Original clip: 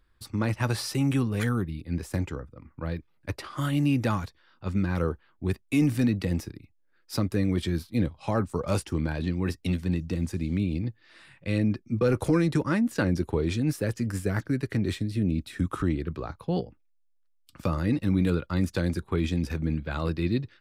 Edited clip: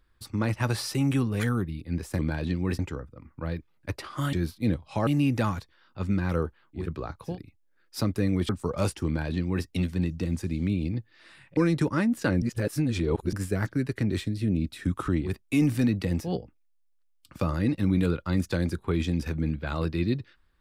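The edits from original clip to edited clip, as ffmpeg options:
-filter_complex "[0:a]asplit=13[a][b][c][d][e][f][g][h][i][j][k][l][m];[a]atrim=end=2.192[n];[b]atrim=start=8.958:end=9.562[o];[c]atrim=start=2.188:end=3.732[p];[d]atrim=start=7.648:end=8.392[q];[e]atrim=start=3.728:end=5.55[r];[f]atrim=start=15.93:end=16.59[s];[g]atrim=start=6.39:end=7.652[t];[h]atrim=start=8.388:end=11.472[u];[i]atrim=start=12.308:end=13.162[v];[j]atrim=start=13.158:end=14.072,asetpts=PTS-STARTPTS,areverse[w];[k]atrim=start=14.068:end=16.09[x];[l]atrim=start=5.39:end=6.55[y];[m]atrim=start=16.43[z];[n][o]acrossfade=d=0.004:c1=hsin:c2=hsin[aa];[aa][p]acrossfade=d=0.004:c1=hsin:c2=hsin[ab];[ab][q]acrossfade=d=0.004:c1=hsin:c2=hsin[ac];[ac][r]acrossfade=d=0.004:c1=hsin:c2=hsin[ad];[ad][s]acrossfade=d=0.16:c1=tri:c2=tri[ae];[ae][t]acrossfade=d=0.16:c1=tri:c2=tri[af];[af][u]acrossfade=d=0.004:c1=hsin:c2=hsin[ag];[ag][v]acrossfade=d=0.004:c1=hsin:c2=hsin[ah];[ah][w]acrossfade=d=0.004:c1=hsin:c2=hsin[ai];[ai][x]acrossfade=d=0.004:c1=hsin:c2=hsin[aj];[aj][y]acrossfade=d=0.16:c1=tri:c2=tri[ak];[ak][z]acrossfade=d=0.16:c1=tri:c2=tri"

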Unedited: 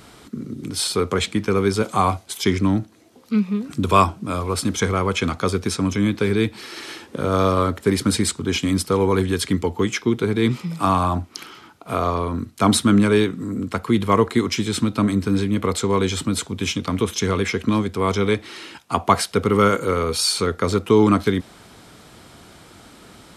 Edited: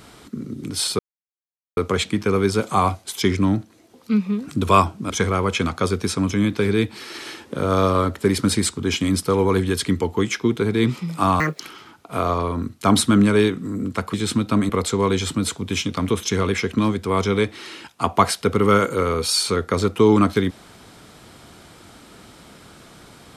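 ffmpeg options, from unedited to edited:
-filter_complex "[0:a]asplit=7[a][b][c][d][e][f][g];[a]atrim=end=0.99,asetpts=PTS-STARTPTS,afade=t=out:st=0.986:d=0.004:c=hsin,apad=pad_dur=0.78[h];[b]atrim=start=0.99:end=4.322,asetpts=PTS-STARTPTS,afade=t=in:d=0.004:c=hsin[i];[c]atrim=start=4.718:end=11.024[j];[d]atrim=start=11.02:end=11.36,asetpts=PTS-STARTPTS,asetrate=76734,aresample=44100,atrim=end_sample=8617,asetpts=PTS-STARTPTS[k];[e]atrim=start=11.356:end=13.902[l];[f]atrim=start=14.598:end=15.162[m];[g]atrim=start=15.598[n];[h][i]concat=n=2:v=0:a=1[o];[o][j]acrossfade=d=0.004:c1=hsin:c2=hsin[p];[p][k]acrossfade=d=0.004:c1=hsin:c2=hsin[q];[q][l]acrossfade=d=0.004:c1=hsin:c2=hsin[r];[r][m]acrossfade=d=0.004:c1=hsin:c2=hsin[s];[s][n]acrossfade=d=0.004:c1=hsin:c2=hsin"

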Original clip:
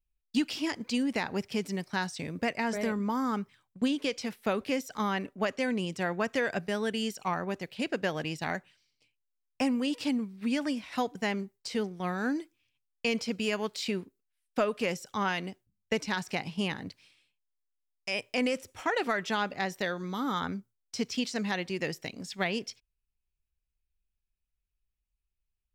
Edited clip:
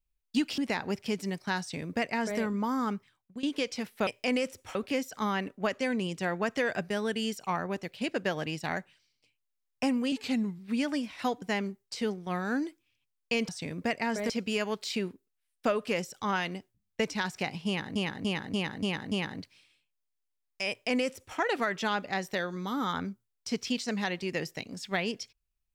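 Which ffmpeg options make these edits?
-filter_complex "[0:a]asplit=14[a][b][c][d][e][f][g][h][i][j][k][l][m][n];[a]atrim=end=0.582[o];[b]atrim=start=1.038:end=3.89,asetpts=PTS-STARTPTS,afade=t=out:st=2.362:d=0.49:silence=0.149624[p];[c]atrim=start=3.89:end=4.532,asetpts=PTS-STARTPTS,afade=t=in:d=0.004:c=hsin:silence=0.149624[q];[d]atrim=start=18.168:end=18.852[r];[e]atrim=start=4.528:end=9.904[s];[f]atrim=start=9.9:end=10.32,asetpts=PTS-STARTPTS,asetrate=39690,aresample=44100[t];[g]atrim=start=10.316:end=13.222[u];[h]atrim=start=2.058:end=2.872[v];[i]atrim=start=13.218:end=16.882[w];[j]atrim=start=16.588:end=16.882[x];[k]atrim=start=16.588:end=16.882[y];[l]atrim=start=16.588:end=16.882[z];[m]atrim=start=16.588:end=16.882[aa];[n]atrim=start=16.588[ab];[p][q]concat=n=2:v=0:a=1[ac];[o][ac]acrossfade=d=0.004:c1=hsin:c2=hsin[ad];[ad][r]acrossfade=d=0.004:c1=hsin:c2=hsin[ae];[ae][s]acrossfade=d=0.004:c1=hsin:c2=hsin[af];[af][t]acrossfade=d=0.004:c1=hsin:c2=hsin[ag];[ag][u]acrossfade=d=0.004:c1=hsin:c2=hsin[ah];[ah][v]acrossfade=d=0.004:c1=hsin:c2=hsin[ai];[ai][w]acrossfade=d=0.004:c1=hsin:c2=hsin[aj];[aj][x]acrossfade=d=0.004:c1=hsin:c2=hsin[ak];[ak][y]acrossfade=d=0.004:c1=hsin:c2=hsin[al];[al][z]acrossfade=d=0.004:c1=hsin:c2=hsin[am];[am][aa]acrossfade=d=0.004:c1=hsin:c2=hsin[an];[an][ab]acrossfade=d=0.004:c1=hsin:c2=hsin"

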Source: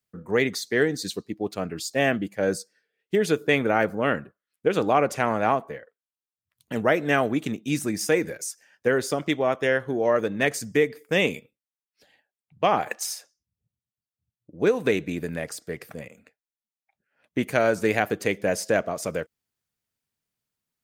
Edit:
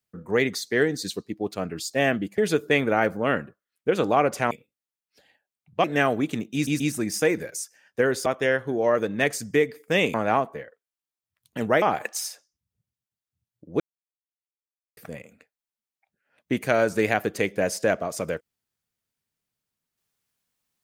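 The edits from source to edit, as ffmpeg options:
-filter_complex "[0:a]asplit=11[a][b][c][d][e][f][g][h][i][j][k];[a]atrim=end=2.382[l];[b]atrim=start=3.158:end=5.292[m];[c]atrim=start=11.348:end=12.682[n];[d]atrim=start=6.968:end=7.802[o];[e]atrim=start=7.668:end=7.802[p];[f]atrim=start=7.668:end=9.132[q];[g]atrim=start=9.468:end=11.352[r];[h]atrim=start=5.288:end=6.972[s];[i]atrim=start=12.678:end=14.66,asetpts=PTS-STARTPTS,afade=t=out:st=1.978:d=0.004:c=hsin[t];[j]atrim=start=14.66:end=15.83,asetpts=PTS-STARTPTS,volume=0[u];[k]atrim=start=15.83,asetpts=PTS-STARTPTS,afade=t=in:d=0.004:c=hsin[v];[l][m]acrossfade=d=0.004:c1=hsin:c2=hsin[w];[w][n]acrossfade=d=0.004:c1=hsin:c2=hsin[x];[x][o]acrossfade=d=0.004:c1=hsin:c2=hsin[y];[y][p]acrossfade=d=0.004:c1=hsin:c2=hsin[z];[z][q]acrossfade=d=0.004:c1=hsin:c2=hsin[aa];[aa][r]acrossfade=d=0.004:c1=hsin:c2=hsin[ab];[ab][s]acrossfade=d=0.004:c1=hsin:c2=hsin[ac];[t][u][v]concat=n=3:v=0:a=1[ad];[ac][ad]acrossfade=d=0.004:c1=hsin:c2=hsin"

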